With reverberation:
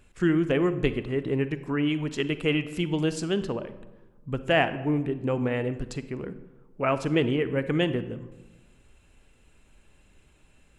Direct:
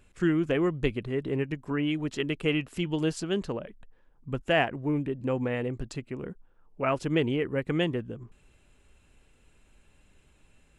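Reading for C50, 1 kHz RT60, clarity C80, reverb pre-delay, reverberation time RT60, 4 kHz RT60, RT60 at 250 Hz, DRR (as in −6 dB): 13.0 dB, 1.1 s, 15.0 dB, 37 ms, 1.2 s, 0.70 s, 1.4 s, 12.0 dB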